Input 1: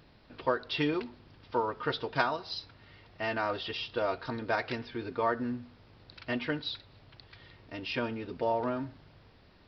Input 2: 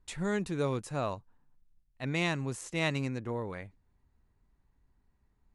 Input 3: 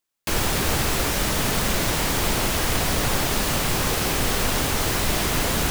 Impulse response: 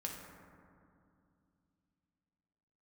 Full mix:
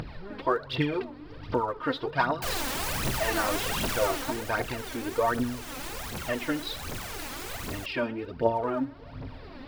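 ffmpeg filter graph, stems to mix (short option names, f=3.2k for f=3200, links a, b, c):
-filter_complex "[0:a]volume=1.5dB,asplit=2[a][b];[b]volume=-19.5dB[c];[1:a]lowpass=f=2k:w=0.5412,lowpass=f=2k:w=1.3066,asubboost=boost=11.5:cutoff=110,volume=-18dB[d];[2:a]aeval=exprs='(mod(8.41*val(0)+1,2)-1)/8.41':c=same,adelay=2150,volume=-5dB,afade=t=out:st=3.96:d=0.49:silence=0.298538[e];[3:a]atrim=start_sample=2205[f];[c][f]afir=irnorm=-1:irlink=0[g];[a][d][e][g]amix=inputs=4:normalize=0,highshelf=f=3.2k:g=-9,acompressor=mode=upward:threshold=-33dB:ratio=2.5,aphaser=in_gain=1:out_gain=1:delay=4:decay=0.64:speed=1.3:type=triangular"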